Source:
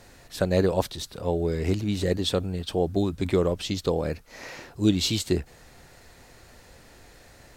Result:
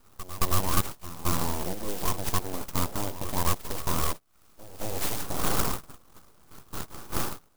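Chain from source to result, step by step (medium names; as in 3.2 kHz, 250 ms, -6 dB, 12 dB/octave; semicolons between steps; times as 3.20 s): wind noise 550 Hz -35 dBFS; band-stop 5.9 kHz, Q 7.4; gate -31 dBFS, range -22 dB; peaking EQ 270 Hz +14 dB 1.5 oct; peak limiter -9.5 dBFS, peak gain reduction 10.5 dB; resonant low shelf 450 Hz -10 dB, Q 3; full-wave rectifier; on a send: reverse echo 221 ms -14 dB; on the sum: sampling jitter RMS 0.13 ms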